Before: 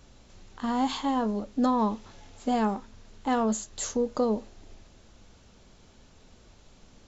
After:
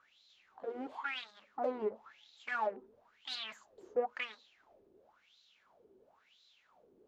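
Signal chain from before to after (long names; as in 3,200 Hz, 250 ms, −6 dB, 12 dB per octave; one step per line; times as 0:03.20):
harmonic generator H 3 −20 dB, 5 −17 dB, 7 −7 dB, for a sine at −15.5 dBFS
LFO wah 0.97 Hz 370–4,000 Hz, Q 8.3
level +1 dB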